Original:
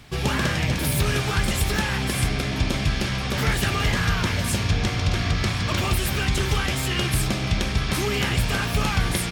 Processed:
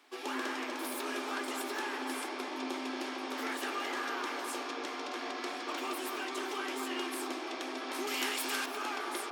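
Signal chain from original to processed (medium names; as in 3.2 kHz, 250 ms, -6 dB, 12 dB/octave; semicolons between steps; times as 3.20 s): rippled Chebyshev high-pass 250 Hz, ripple 6 dB; 8.07–8.66 s: tilt EQ +3.5 dB/octave; bucket-brigade echo 229 ms, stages 2048, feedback 82%, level -4 dB; trim -8.5 dB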